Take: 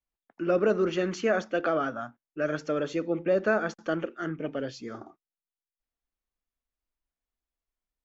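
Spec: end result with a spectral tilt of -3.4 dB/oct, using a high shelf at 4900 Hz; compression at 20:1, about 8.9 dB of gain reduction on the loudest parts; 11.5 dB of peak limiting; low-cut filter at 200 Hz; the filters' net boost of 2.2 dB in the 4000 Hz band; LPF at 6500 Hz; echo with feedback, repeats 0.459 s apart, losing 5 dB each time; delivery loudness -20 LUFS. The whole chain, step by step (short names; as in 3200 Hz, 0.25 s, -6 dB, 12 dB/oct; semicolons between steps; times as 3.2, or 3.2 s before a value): HPF 200 Hz; LPF 6500 Hz; bell 4000 Hz +6.5 dB; high shelf 4900 Hz -6.5 dB; compressor 20:1, threshold -28 dBFS; limiter -31 dBFS; feedback echo 0.459 s, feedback 56%, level -5 dB; gain +20 dB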